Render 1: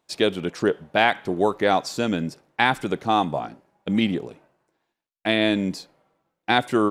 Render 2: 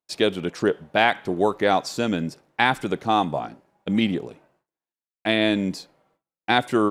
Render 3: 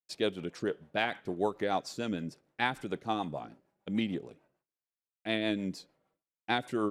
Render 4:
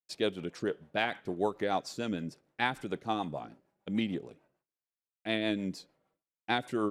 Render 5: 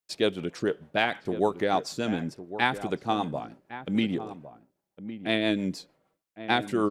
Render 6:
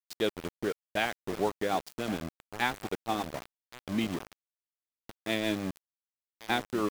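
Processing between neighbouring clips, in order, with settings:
noise gate with hold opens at −56 dBFS
rotating-speaker cabinet horn 6.7 Hz; level −9 dB
no processing that can be heard
slap from a distant wall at 190 metres, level −12 dB; level +5.5 dB
centre clipping without the shift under −29.5 dBFS; level −4.5 dB

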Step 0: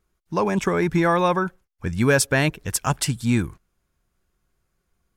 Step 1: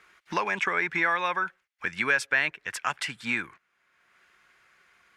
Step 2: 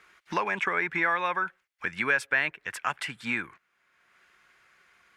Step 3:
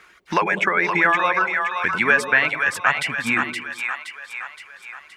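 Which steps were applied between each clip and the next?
speech leveller 2 s; resonant band-pass 2,000 Hz, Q 1.9; multiband upward and downward compressor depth 70%; level +2.5 dB
dynamic equaliser 5,600 Hz, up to −7 dB, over −45 dBFS, Q 0.87
reverb reduction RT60 0.7 s; on a send: echo with a time of its own for lows and highs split 640 Hz, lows 98 ms, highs 520 ms, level −5 dB; on the sum: level +8.5 dB

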